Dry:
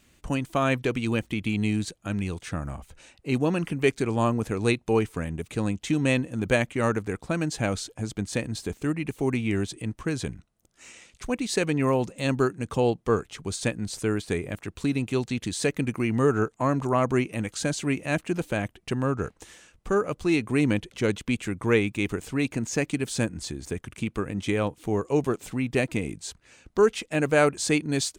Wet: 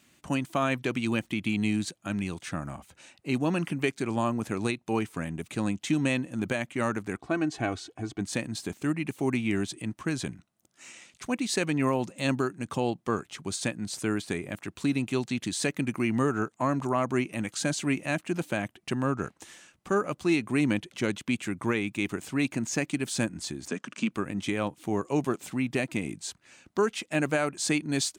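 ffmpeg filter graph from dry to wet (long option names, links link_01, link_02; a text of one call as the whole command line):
ffmpeg -i in.wav -filter_complex "[0:a]asettb=1/sr,asplit=3[link_01][link_02][link_03];[link_01]atrim=end=7.164[link_04];[link_02]atrim=start=7.16:end=8.21,asetpts=PTS-STARTPTS,afade=type=in:duration=0.004:curve=qsin,afade=type=out:start_time=1.046:duration=0.004:curve=qsin,aemphasis=mode=reproduction:type=75kf,aecho=1:1:2.7:0.65,atrim=end_sample=46305[link_05];[link_03]atrim=start=8.206[link_06];[link_04][link_05]acrossfade=duration=0.004:curve1=hsin:curve2=qsin[link_07];[link_07][link_06]acrossfade=duration=0.004:curve1=qsin:curve2=hsin,asettb=1/sr,asplit=3[link_08][link_09][link_10];[link_08]atrim=end=23.684[link_11];[link_09]atrim=start=23.68:end=24.11,asetpts=PTS-STARTPTS,afade=type=in:duration=0.004:curve=qsin,afade=type=out:start_time=0.426:duration=0.004:curve=qsin,highpass=frequency=210:width=0.5412,highpass=frequency=210:width=1.3066,equalizer=frequency=350:width_type=q:width=4:gain=-10,equalizer=frequency=780:width_type=q:width=4:gain=-8,equalizer=frequency=2100:width_type=q:width=4:gain=-7,equalizer=frequency=3600:width_type=q:width=4:gain=-5,lowpass=frequency=7000:width=0.5412,lowpass=frequency=7000:width=1.3066,acontrast=63[link_12];[link_10]atrim=start=24.106[link_13];[link_11][link_12]acrossfade=duration=0.004:curve1=hsin:curve2=qsin[link_14];[link_14][link_13]acrossfade=duration=0.004:curve1=qsin:curve2=hsin,highpass=140,equalizer=frequency=460:width=4.8:gain=-8.5,alimiter=limit=-15.5dB:level=0:latency=1:release=297" out.wav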